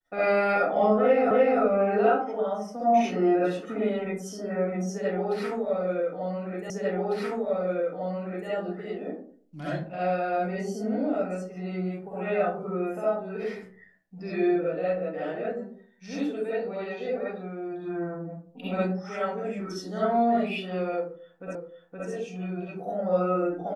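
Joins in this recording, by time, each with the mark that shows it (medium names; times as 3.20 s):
1.31 s: repeat of the last 0.3 s
6.70 s: repeat of the last 1.8 s
21.55 s: repeat of the last 0.52 s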